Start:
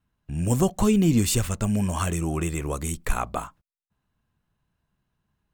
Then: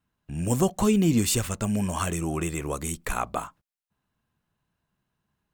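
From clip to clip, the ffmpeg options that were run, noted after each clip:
ffmpeg -i in.wav -af "lowshelf=frequency=92:gain=-9.5" out.wav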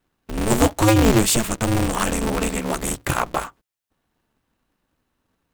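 ffmpeg -i in.wav -af "aeval=exprs='val(0)*sgn(sin(2*PI*110*n/s))':channel_layout=same,volume=6dB" out.wav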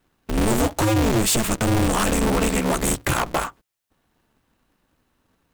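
ffmpeg -i in.wav -af "acompressor=threshold=-18dB:ratio=6,volume=21dB,asoftclip=hard,volume=-21dB,volume=5dB" out.wav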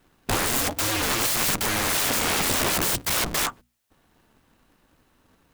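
ffmpeg -i in.wav -af "aeval=exprs='(mod(15*val(0)+1,2)-1)/15':channel_layout=same,bandreject=frequency=60:width_type=h:width=6,bandreject=frequency=120:width_type=h:width=6,bandreject=frequency=180:width_type=h:width=6,bandreject=frequency=240:width_type=h:width=6,volume=5.5dB" out.wav

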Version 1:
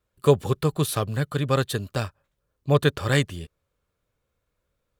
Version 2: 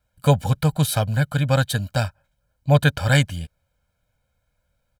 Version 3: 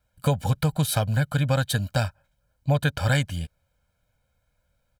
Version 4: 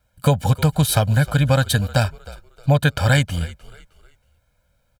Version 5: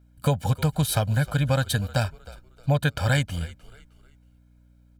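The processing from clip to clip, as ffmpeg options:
ffmpeg -i in.wav -af "aecho=1:1:1.3:0.94,volume=1.5dB" out.wav
ffmpeg -i in.wav -af "acompressor=threshold=-18dB:ratio=6" out.wav
ffmpeg -i in.wav -filter_complex "[0:a]asplit=4[link_01][link_02][link_03][link_04];[link_02]adelay=311,afreqshift=-53,volume=-19dB[link_05];[link_03]adelay=622,afreqshift=-106,volume=-28.6dB[link_06];[link_04]adelay=933,afreqshift=-159,volume=-38.3dB[link_07];[link_01][link_05][link_06][link_07]amix=inputs=4:normalize=0,volume=6dB" out.wav
ffmpeg -i in.wav -af "aeval=exprs='val(0)+0.00355*(sin(2*PI*60*n/s)+sin(2*PI*2*60*n/s)/2+sin(2*PI*3*60*n/s)/3+sin(2*PI*4*60*n/s)/4+sin(2*PI*5*60*n/s)/5)':channel_layout=same,volume=-6dB" out.wav

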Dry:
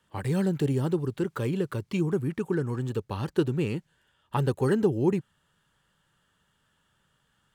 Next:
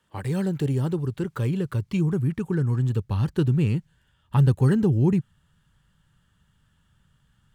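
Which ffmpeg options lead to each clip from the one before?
ffmpeg -i in.wav -af "asubboost=boost=5.5:cutoff=180" out.wav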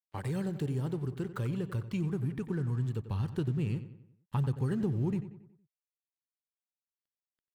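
ffmpeg -i in.wav -filter_complex "[0:a]acompressor=threshold=-31dB:ratio=2,aeval=exprs='sgn(val(0))*max(abs(val(0))-0.00224,0)':channel_layout=same,asplit=2[link_01][link_02];[link_02]adelay=92,lowpass=frequency=3200:poles=1,volume=-12dB,asplit=2[link_03][link_04];[link_04]adelay=92,lowpass=frequency=3200:poles=1,volume=0.47,asplit=2[link_05][link_06];[link_06]adelay=92,lowpass=frequency=3200:poles=1,volume=0.47,asplit=2[link_07][link_08];[link_08]adelay=92,lowpass=frequency=3200:poles=1,volume=0.47,asplit=2[link_09][link_10];[link_10]adelay=92,lowpass=frequency=3200:poles=1,volume=0.47[link_11];[link_03][link_05][link_07][link_09][link_11]amix=inputs=5:normalize=0[link_12];[link_01][link_12]amix=inputs=2:normalize=0,volume=-3dB" out.wav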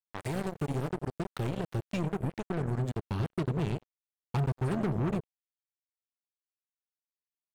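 ffmpeg -i in.wav -af "acrusher=bits=4:mix=0:aa=0.5" out.wav

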